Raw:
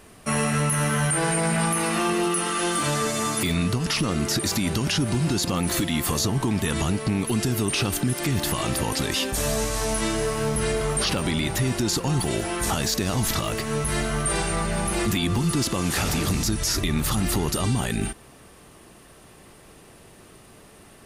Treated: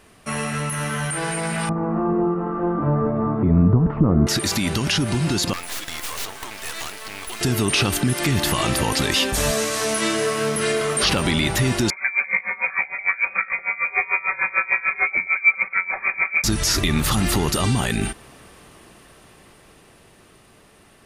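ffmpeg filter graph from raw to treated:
-filter_complex "[0:a]asettb=1/sr,asplit=3[s0][s1][s2];[s0]atrim=end=1.694[s3];[s1]atrim=start=1.69:end=4.27,asetpts=PTS-STARTPTS,afade=t=in:d=0.004:c=qsin,afade=t=out:st=2.576:d=0.004:c=qsin,lowpass=f=1100:w=0.5412,lowpass=f=1100:w=1.3066,lowshelf=f=360:g=9.5[s4];[s2]atrim=start=4.266[s5];[s3][s4]acrossfade=d=0.004:c1=hsin:c2=qsin[s6];[s6][s5]acrossfade=d=0.004:c1=qsin:c2=hsin,asettb=1/sr,asplit=3[s7][s8][s9];[s7]atrim=end=5.534[s10];[s8]atrim=start=5.53:end=7.41,asetpts=PTS-STARTPTS,afade=t=in:d=0.004:c=qsin,afade=t=out:st=1.876:d=0.004:c=qsin,highpass=760,aeval=exprs='(mod(10.6*val(0)+1,2)-1)/10.6':c=same,acrusher=bits=4:dc=4:mix=0:aa=0.000001[s11];[s9]atrim=start=7.406[s12];[s10][s11]acrossfade=d=0.004:c1=hsin:c2=qsin[s13];[s13][s12]acrossfade=d=0.004:c1=qsin:c2=hsin,asettb=1/sr,asplit=3[s14][s15][s16];[s14]atrim=end=9.514[s17];[s15]atrim=start=9.51:end=11.03,asetpts=PTS-STARTPTS,afade=t=in:d=0.004:c=qsin,afade=t=out:st=1.516:d=0.004:c=qsin,highpass=200,bandreject=f=850:w=5.2[s18];[s16]atrim=start=11.026[s19];[s17][s18]acrossfade=d=0.004:c1=hsin:c2=qsin[s20];[s20][s19]acrossfade=d=0.004:c1=qsin:c2=hsin,asettb=1/sr,asplit=3[s21][s22][s23];[s21]atrim=end=11.904[s24];[s22]atrim=start=11.9:end=16.44,asetpts=PTS-STARTPTS,afade=t=in:d=0.004:c=qsin,afade=t=out:st=4.536:d=0.004:c=qsin,aecho=1:1:5.2:0.63,atrim=end_sample=200214,lowpass=f=2100:t=q:w=0.5098,lowpass=f=2100:t=q:w=0.6013,lowpass=f=2100:t=q:w=0.9,lowpass=f=2100:t=q:w=2.563,afreqshift=-2500,aeval=exprs='val(0)*pow(10,-21*(0.5-0.5*cos(2*PI*6.7*n/s))/20)':c=same[s25];[s23]atrim=start=16.436[s26];[s24][s25]acrossfade=d=0.004:c1=hsin:c2=qsin[s27];[s27][s26]acrossfade=d=0.004:c1=qsin:c2=hsin,highshelf=f=4600:g=-9,dynaudnorm=f=390:g=13:m=2.24,tiltshelf=f=1400:g=-3.5"

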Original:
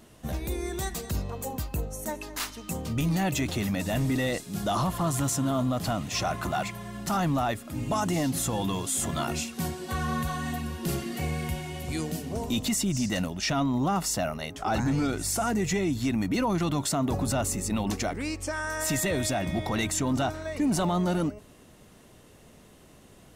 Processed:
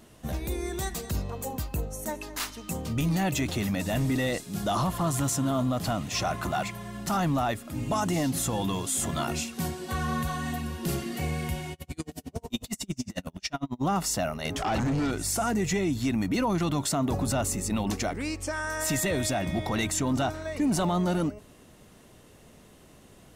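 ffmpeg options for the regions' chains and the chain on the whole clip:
-filter_complex "[0:a]asettb=1/sr,asplit=3[s0][s1][s2];[s0]atrim=end=11.734[s3];[s1]atrim=start=11.73:end=13.83,asetpts=PTS-STARTPTS,afade=t=in:d=0.004:c=qsin,afade=t=out:st=2.096:d=0.004:c=qsin,asplit=2[s4][s5];[s5]adelay=37,volume=0.266[s6];[s4][s6]amix=inputs=2:normalize=0,atrim=end_sample=92610,aeval=exprs='val(0)*pow(10,-38*(0.5-0.5*cos(2*PI*11*n/s))/20)':c=same[s7];[s2]atrim=start=13.826[s8];[s3][s7]acrossfade=d=0.004:c1=hsin:c2=qsin[s9];[s9][s8]acrossfade=d=0.004:c1=qsin:c2=hsin,asettb=1/sr,asplit=3[s10][s11][s12];[s10]atrim=end=14.454[s13];[s11]atrim=start=14.45:end=15.11,asetpts=PTS-STARTPTS,afade=t=in:d=0.004:c=qsin,afade=t=out:st=0.656:d=0.004:c=qsin,highshelf=f=9000:g=-4,acompressor=threshold=0.02:ratio=2.5:attack=3.2:release=140:knee=1:detection=peak,aeval=exprs='0.0668*sin(PI/2*2*val(0)/0.0668)':c=same[s14];[s12]atrim=start=15.106[s15];[s13][s14]acrossfade=d=0.004:c1=hsin:c2=qsin[s16];[s16][s15]acrossfade=d=0.004:c1=qsin:c2=hsin"

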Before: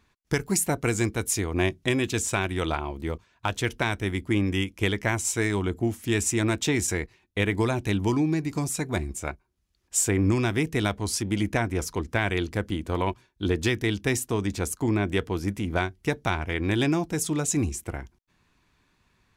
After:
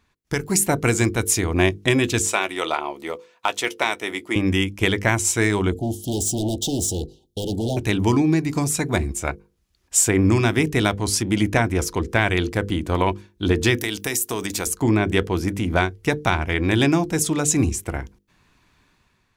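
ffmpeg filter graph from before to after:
-filter_complex "[0:a]asettb=1/sr,asplit=3[s0][s1][s2];[s0]atrim=end=2.274[s3];[s1]atrim=start=2.27:end=4.36,asetpts=PTS-STARTPTS,afade=t=in:d=0.004:c=qsin,afade=t=out:st=2.086:d=0.004:c=qsin,highpass=430,bandreject=f=1600:w=8.7,asplit=2[s4][s5];[s5]adelay=14,volume=0.224[s6];[s4][s6]amix=inputs=2:normalize=0,atrim=end_sample=92169[s7];[s2]atrim=start=4.356[s8];[s3][s7]acrossfade=d=0.004:c1=hsin:c2=qsin[s9];[s9][s8]acrossfade=d=0.004:c1=qsin:c2=hsin,asettb=1/sr,asplit=3[s10][s11][s12];[s10]atrim=end=5.724[s13];[s11]atrim=start=5.72:end=7.77,asetpts=PTS-STARTPTS,afade=t=in:d=0.004:c=qsin,afade=t=out:st=2.046:d=0.004:c=qsin,asoftclip=type=hard:threshold=0.0447,asuperstop=centerf=1600:order=20:qfactor=0.75[s14];[s12]atrim=start=7.766[s15];[s13][s14]acrossfade=d=0.004:c1=hsin:c2=qsin[s16];[s16][s15]acrossfade=d=0.004:c1=qsin:c2=hsin,asettb=1/sr,asplit=3[s17][s18][s19];[s17]atrim=end=13.774[s20];[s18]atrim=start=13.77:end=14.67,asetpts=PTS-STARTPTS,afade=t=in:d=0.004:c=qsin,afade=t=out:st=0.896:d=0.004:c=qsin,aemphasis=mode=production:type=bsi,acompressor=threshold=0.0447:ratio=4:attack=3.2:release=140:knee=1:detection=peak[s21];[s19]atrim=start=14.666[s22];[s20][s21]acrossfade=d=0.004:c1=hsin:c2=qsin[s23];[s23][s22]acrossfade=d=0.004:c1=qsin:c2=hsin,bandreject=f=50:t=h:w=6,bandreject=f=100:t=h:w=6,bandreject=f=150:t=h:w=6,bandreject=f=200:t=h:w=6,bandreject=f=250:t=h:w=6,bandreject=f=300:t=h:w=6,bandreject=f=350:t=h:w=6,bandreject=f=400:t=h:w=6,bandreject=f=450:t=h:w=6,bandreject=f=500:t=h:w=6,dynaudnorm=f=130:g=7:m=2.24"

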